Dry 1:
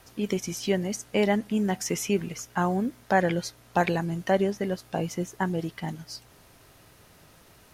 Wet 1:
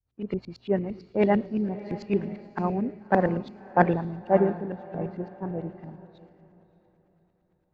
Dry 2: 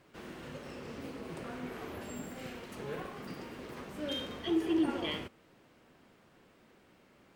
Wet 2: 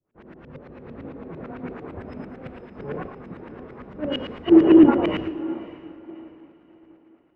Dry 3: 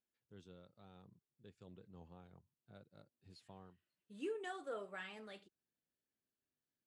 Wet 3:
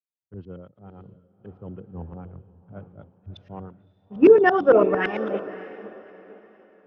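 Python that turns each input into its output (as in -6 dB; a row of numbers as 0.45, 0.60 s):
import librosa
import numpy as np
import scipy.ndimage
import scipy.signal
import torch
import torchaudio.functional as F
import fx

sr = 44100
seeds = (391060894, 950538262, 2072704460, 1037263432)

p1 = fx.freq_compress(x, sr, knee_hz=2400.0, ratio=1.5)
p2 = fx.filter_lfo_lowpass(p1, sr, shape='saw_up', hz=8.9, low_hz=290.0, high_hz=2600.0, q=0.89)
p3 = p2 + fx.echo_diffused(p2, sr, ms=601, feedback_pct=58, wet_db=-9.5, dry=0)
p4 = fx.band_widen(p3, sr, depth_pct=100)
y = librosa.util.normalize(p4) * 10.0 ** (-3 / 20.0)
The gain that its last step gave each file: -2.0, +8.5, +21.5 dB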